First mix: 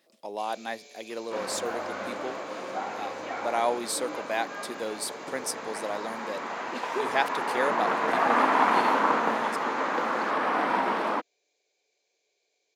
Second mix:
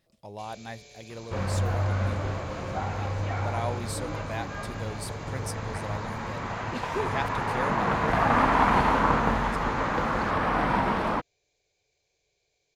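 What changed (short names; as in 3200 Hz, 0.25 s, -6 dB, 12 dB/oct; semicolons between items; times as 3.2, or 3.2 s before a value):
speech -6.5 dB; master: remove HPF 260 Hz 24 dB/oct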